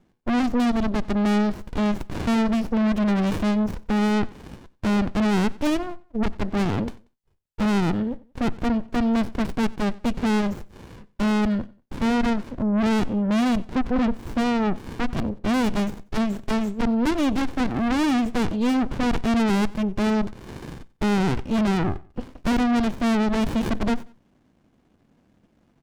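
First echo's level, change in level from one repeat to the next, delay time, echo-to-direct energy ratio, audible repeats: -22.5 dB, -9.5 dB, 92 ms, -22.0 dB, 2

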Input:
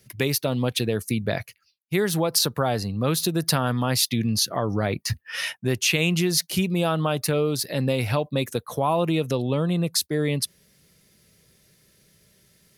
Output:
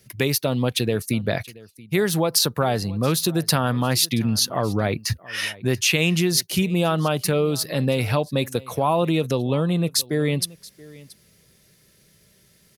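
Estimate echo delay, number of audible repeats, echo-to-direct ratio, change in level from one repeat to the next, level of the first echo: 0.678 s, 1, -21.5 dB, no steady repeat, -21.5 dB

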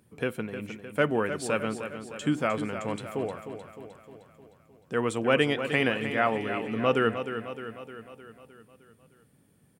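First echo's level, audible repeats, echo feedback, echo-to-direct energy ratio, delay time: -9.5 dB, 6, 57%, -8.0 dB, 0.307 s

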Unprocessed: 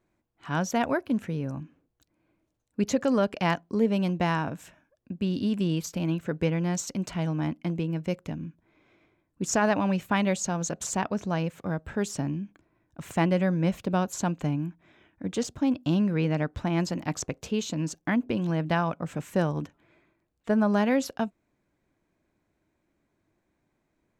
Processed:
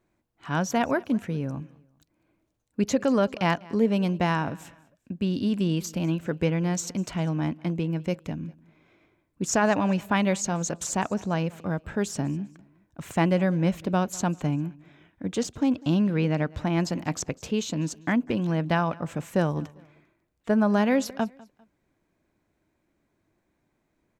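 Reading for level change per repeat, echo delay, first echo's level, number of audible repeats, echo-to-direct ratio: -9.0 dB, 0.199 s, -23.0 dB, 2, -22.5 dB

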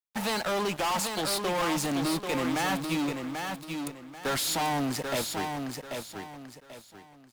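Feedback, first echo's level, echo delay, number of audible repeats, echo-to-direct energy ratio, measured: 30%, -5.5 dB, 0.788 s, 3, -5.0 dB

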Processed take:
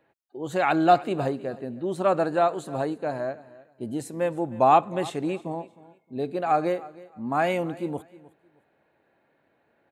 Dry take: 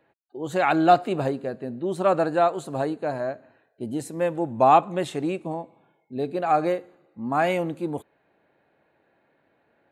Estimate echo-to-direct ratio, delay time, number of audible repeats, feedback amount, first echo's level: -20.0 dB, 0.311 s, 2, 23%, -20.0 dB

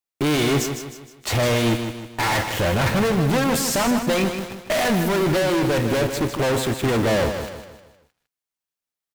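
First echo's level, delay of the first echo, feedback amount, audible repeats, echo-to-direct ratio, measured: -8.0 dB, 0.155 s, 43%, 4, -7.0 dB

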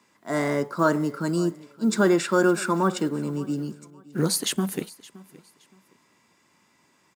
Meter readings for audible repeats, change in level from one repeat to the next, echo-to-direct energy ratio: 2, -11.5 dB, -20.5 dB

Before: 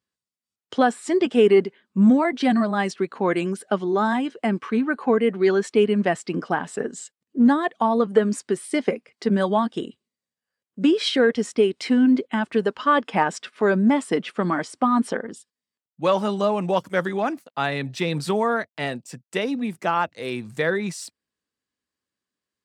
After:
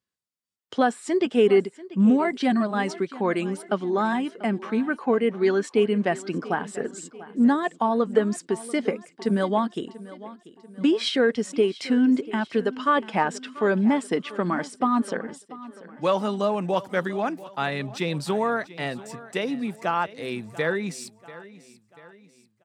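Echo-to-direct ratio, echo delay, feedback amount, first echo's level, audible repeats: -17.0 dB, 0.689 s, 48%, -18.0 dB, 3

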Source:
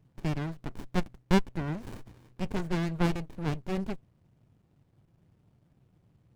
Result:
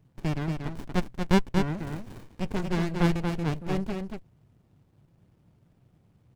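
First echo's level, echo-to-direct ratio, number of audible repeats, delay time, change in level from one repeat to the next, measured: -5.0 dB, -5.0 dB, 1, 0.234 s, no steady repeat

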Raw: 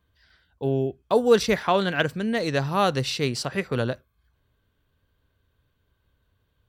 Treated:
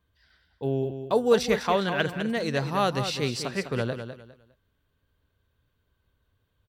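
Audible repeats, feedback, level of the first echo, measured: 3, 26%, -9.0 dB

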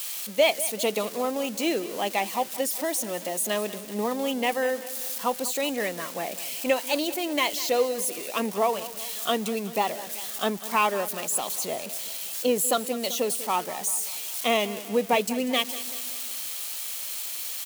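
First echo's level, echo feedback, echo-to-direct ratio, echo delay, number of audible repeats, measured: -16.0 dB, 54%, -14.5 dB, 0.193 s, 4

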